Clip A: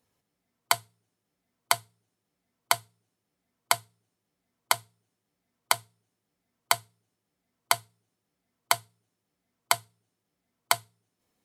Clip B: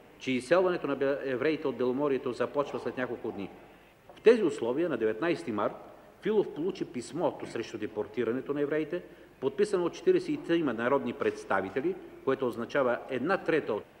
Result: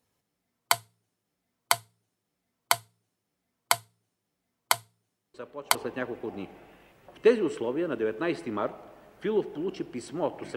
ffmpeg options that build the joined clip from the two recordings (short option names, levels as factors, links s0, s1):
-filter_complex "[1:a]asplit=2[s0][s1];[0:a]apad=whole_dur=10.56,atrim=end=10.56,atrim=end=5.752[s2];[s1]atrim=start=2.758:end=7.57[s3];[s0]atrim=start=2.35:end=2.76,asetpts=PTS-STARTPTS,volume=0.282,afade=t=in:d=0.004:c=hsin,afade=t=out:st=0.406:d=0.004:c=hsin,adelay=5340[s4];[s2][s3]acrossfade=d=0.004:c1=hsin:c2=hsin[s5];[s5][s4]amix=inputs=2:normalize=0"